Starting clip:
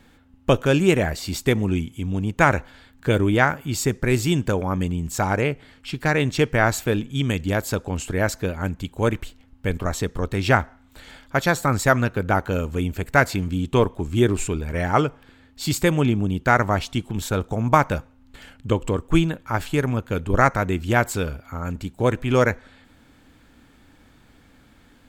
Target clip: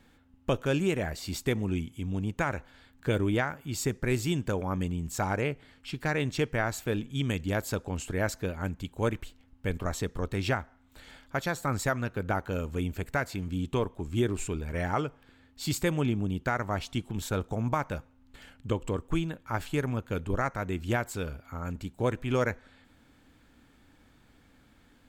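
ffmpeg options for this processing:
-af "alimiter=limit=-9dB:level=0:latency=1:release=415,volume=-7dB"

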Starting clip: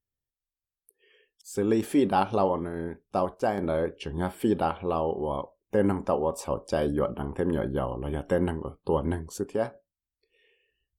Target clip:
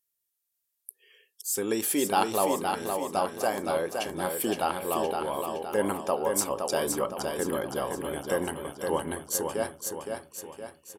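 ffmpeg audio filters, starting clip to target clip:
-filter_complex "[0:a]aemphasis=mode=production:type=riaa,asplit=2[a][b];[b]aecho=0:1:516|1032|1548|2064|2580|3096:0.562|0.276|0.135|0.0662|0.0324|0.0159[c];[a][c]amix=inputs=2:normalize=0,aresample=32000,aresample=44100"

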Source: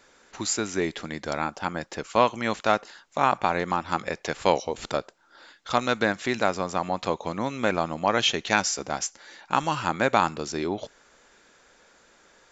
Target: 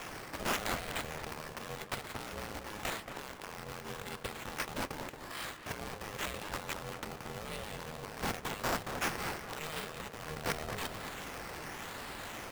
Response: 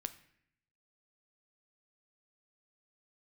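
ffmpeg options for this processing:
-filter_complex "[0:a]highshelf=f=3.9k:g=8,areverse,acompressor=threshold=-34dB:ratio=12,areverse,alimiter=level_in=10.5dB:limit=-24dB:level=0:latency=1:release=37,volume=-10.5dB,acrossover=split=130|3000[a][b][c];[b]acompressor=threshold=-56dB:ratio=6[d];[a][d][c]amix=inputs=3:normalize=0,acrusher=samples=10:mix=1:aa=0.000001:lfo=1:lforange=6:lforate=0.89,asplit=2[e][f];[f]adelay=227,lowpass=f=1.4k:p=1,volume=-6dB,asplit=2[g][h];[h]adelay=227,lowpass=f=1.4k:p=1,volume=0.51,asplit=2[i][j];[j]adelay=227,lowpass=f=1.4k:p=1,volume=0.51,asplit=2[k][l];[l]adelay=227,lowpass=f=1.4k:p=1,volume=0.51,asplit=2[m][n];[n]adelay=227,lowpass=f=1.4k:p=1,volume=0.51,asplit=2[o][p];[p]adelay=227,lowpass=f=1.4k:p=1,volume=0.51[q];[g][i][k][m][o][q]amix=inputs=6:normalize=0[r];[e][r]amix=inputs=2:normalize=0,aeval=exprs='val(0)*sgn(sin(2*PI*310*n/s))':c=same,volume=12dB"

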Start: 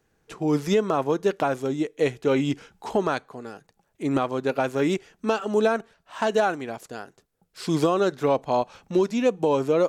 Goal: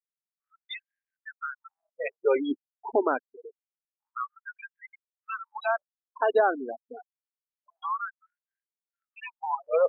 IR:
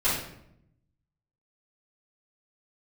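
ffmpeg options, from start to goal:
-filter_complex "[0:a]asettb=1/sr,asplit=3[a][b][c];[a]atrim=end=4.684[d];[b]atrim=start=4.68:end=5.49,asetpts=PTS-STARTPTS,afade=t=in:d=0.004:c=qsin,afade=t=out:st=0.806:d=0.004:c=qsin,highshelf=f=3.6k:g=-9.5[e];[c]atrim=start=5.486[f];[d][e]acrossfade=d=0.004:c1=hsin:c2=qsin[g];[g][f]acrossfade=d=0.004:c1=qsin:c2=hsin,afftfilt=real='re*gte(hypot(re,im),0.0891)':imag='im*gte(hypot(re,im),0.0891)':win_size=1024:overlap=0.75,afftfilt=real='re*gte(b*sr/1024,220*pow(1600/220,0.5+0.5*sin(2*PI*0.26*pts/sr)))':imag='im*gte(b*sr/1024,220*pow(1600/220,0.5+0.5*sin(2*PI*0.26*pts/sr)))':win_size=1024:overlap=0.75"

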